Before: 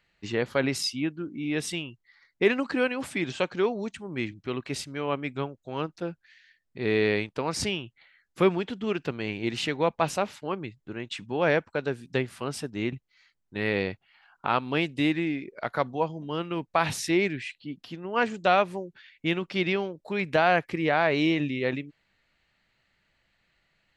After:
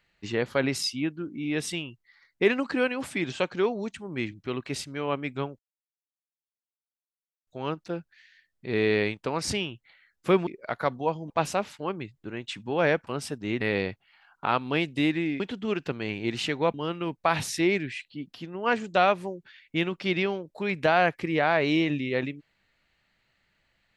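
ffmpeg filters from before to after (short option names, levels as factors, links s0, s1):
-filter_complex "[0:a]asplit=8[s0][s1][s2][s3][s4][s5][s6][s7];[s0]atrim=end=5.59,asetpts=PTS-STARTPTS,afade=t=out:st=5.586:d=0.004:c=hsin,apad=pad_dur=1.88[s8];[s1]atrim=start=5.59:end=8.592,asetpts=PTS-STARTPTS,afade=t=in:d=0.004:c=hsin[s9];[s2]atrim=start=15.408:end=16.242[s10];[s3]atrim=start=9.928:end=11.702[s11];[s4]atrim=start=12.388:end=12.932[s12];[s5]atrim=start=13.618:end=15.412[s13];[s6]atrim=start=8.588:end=9.932[s14];[s7]atrim=start=16.238[s15];[s8][s9]concat=n=2:v=0:a=1[s16];[s16][s10]acrossfade=d=0.004:c1=hsin:c2=hsin[s17];[s17][s11]acrossfade=d=0.004:c1=hsin:c2=hsin[s18];[s18][s12]acrossfade=d=0.004:c1=hsin:c2=hsin[s19];[s19][s13]acrossfade=d=0.004:c1=hsin:c2=hsin[s20];[s20][s14]acrossfade=d=0.004:c1=hsin:c2=hsin[s21];[s21][s15]acrossfade=d=0.004:c1=hsin:c2=hsin"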